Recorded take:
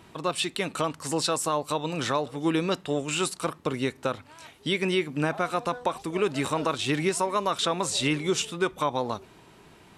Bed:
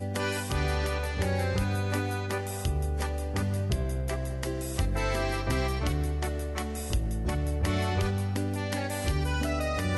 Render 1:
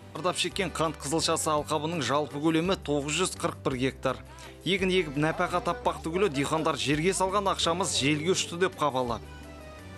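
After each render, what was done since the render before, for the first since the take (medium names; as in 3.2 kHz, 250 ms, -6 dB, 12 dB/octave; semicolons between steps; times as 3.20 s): add bed -16 dB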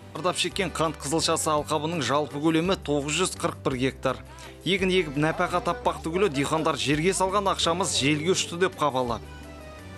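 trim +2.5 dB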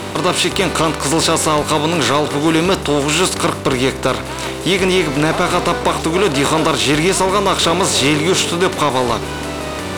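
spectral levelling over time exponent 0.6; waveshaping leveller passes 2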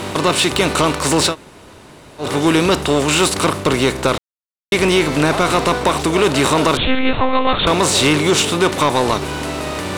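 1.31–2.23 s: room tone, crossfade 0.10 s; 4.18–4.72 s: mute; 6.77–7.67 s: monotone LPC vocoder at 8 kHz 260 Hz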